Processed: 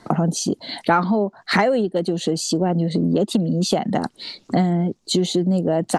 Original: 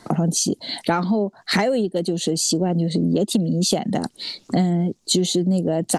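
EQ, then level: high shelf 5500 Hz -9 dB; dynamic EQ 1200 Hz, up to +7 dB, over -39 dBFS, Q 0.88; 0.0 dB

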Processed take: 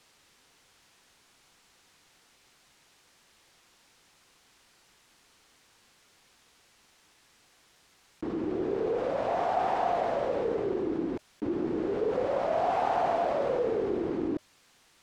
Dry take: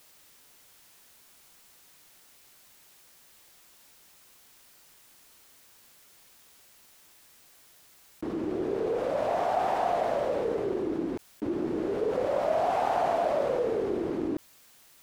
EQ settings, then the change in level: air absorption 62 m; notch 610 Hz, Q 15; 0.0 dB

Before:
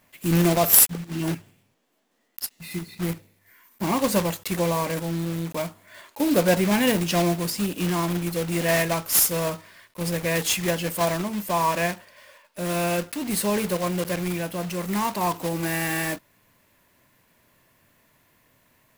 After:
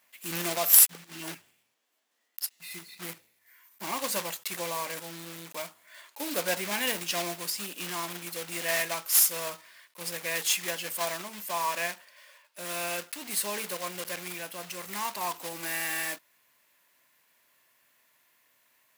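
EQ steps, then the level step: HPF 1500 Hz 6 dB/oct; -2.0 dB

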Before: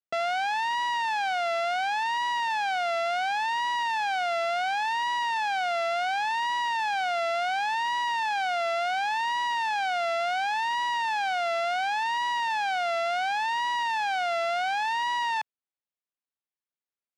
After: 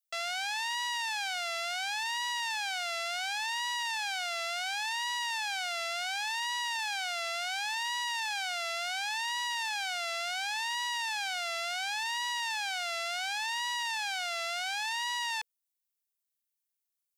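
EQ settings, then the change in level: HPF 310 Hz 12 dB/oct; differentiator; notch 480 Hz, Q 12; +7.5 dB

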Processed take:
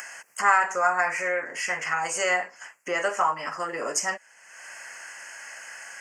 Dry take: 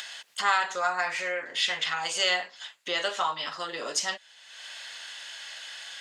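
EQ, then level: Butterworth band-stop 3700 Hz, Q 0.99; +5.0 dB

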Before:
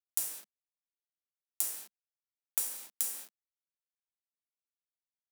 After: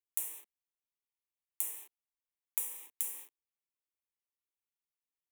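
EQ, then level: fixed phaser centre 970 Hz, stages 8; -1.5 dB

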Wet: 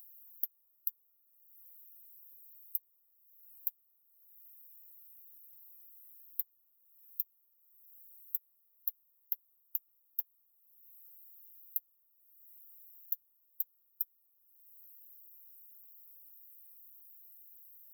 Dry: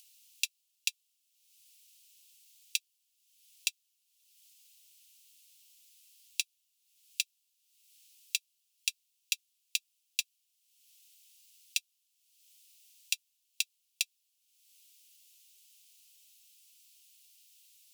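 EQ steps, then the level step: brick-wall FIR band-stop 1400–13000 Hz; bell 7900 Hz +8 dB 2.2 oct; +7.5 dB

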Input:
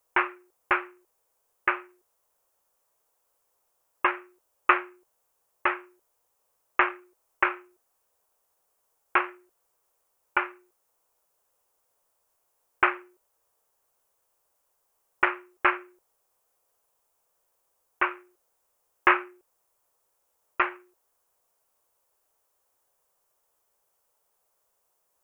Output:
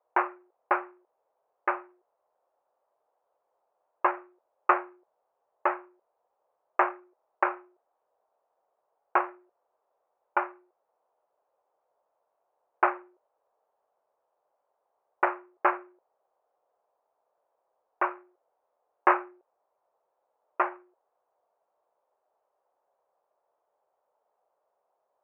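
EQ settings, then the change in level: band-pass 680 Hz, Q 2; air absorption 310 m; +8.5 dB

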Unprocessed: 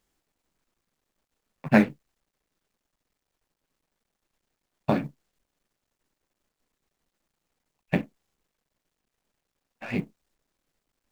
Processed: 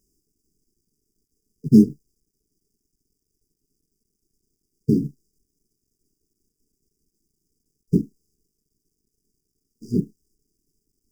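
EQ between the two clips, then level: brick-wall FIR band-stop 460–4700 Hz; +7.5 dB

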